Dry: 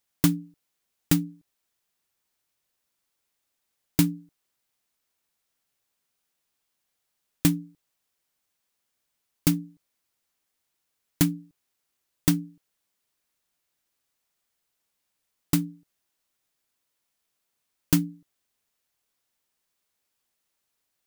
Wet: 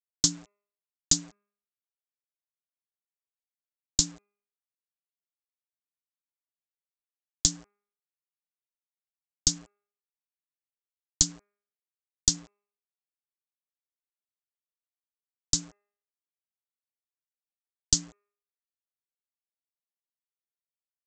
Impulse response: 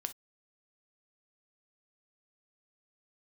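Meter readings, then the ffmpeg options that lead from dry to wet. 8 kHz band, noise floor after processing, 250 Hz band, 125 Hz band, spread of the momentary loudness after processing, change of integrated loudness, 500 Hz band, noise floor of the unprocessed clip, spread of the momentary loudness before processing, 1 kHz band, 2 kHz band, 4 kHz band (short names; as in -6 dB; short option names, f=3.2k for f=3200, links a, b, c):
+9.5 dB, under -85 dBFS, -14.5 dB, -12.0 dB, 6 LU, 0.0 dB, -11.0 dB, -80 dBFS, 14 LU, -11.0 dB, -12.0 dB, +8.0 dB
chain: -filter_complex "[0:a]acrossover=split=680|4800[a][b][c];[b]aeval=exprs='sgn(val(0))*max(abs(val(0))-0.00211,0)':c=same[d];[a][d][c]amix=inputs=3:normalize=0,asubboost=boost=8.5:cutoff=70,acompressor=threshold=-22dB:ratio=2,aexciter=amount=14.3:drive=6.8:freq=3.7k,aresample=16000,acrusher=bits=6:mix=0:aa=0.000001,aresample=44100,bandreject=f=204:t=h:w=4,bandreject=f=408:t=h:w=4,bandreject=f=612:t=h:w=4,bandreject=f=816:t=h:w=4,bandreject=f=1.02k:t=h:w=4,bandreject=f=1.224k:t=h:w=4,bandreject=f=1.428k:t=h:w=4,bandreject=f=1.632k:t=h:w=4,bandreject=f=1.836k:t=h:w=4,bandreject=f=2.04k:t=h:w=4,bandreject=f=2.244k:t=h:w=4,bandreject=f=2.448k:t=h:w=4,bandreject=f=2.652k:t=h:w=4,volume=-8dB"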